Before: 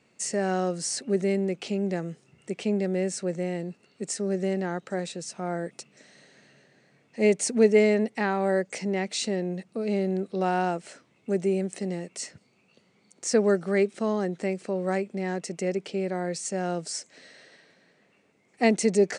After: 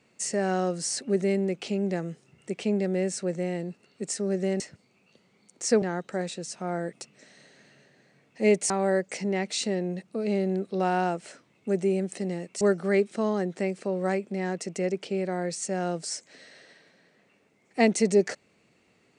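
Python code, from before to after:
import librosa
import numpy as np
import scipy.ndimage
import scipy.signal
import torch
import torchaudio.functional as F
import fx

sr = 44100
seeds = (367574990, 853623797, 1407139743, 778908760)

y = fx.edit(x, sr, fx.cut(start_s=7.48, length_s=0.83),
    fx.move(start_s=12.22, length_s=1.22, to_s=4.6), tone=tone)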